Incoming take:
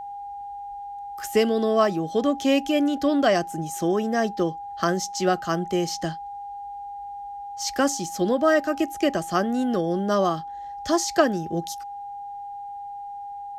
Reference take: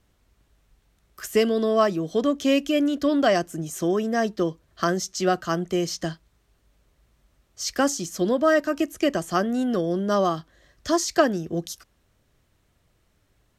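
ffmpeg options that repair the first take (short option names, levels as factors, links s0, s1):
-af "bandreject=f=810:w=30"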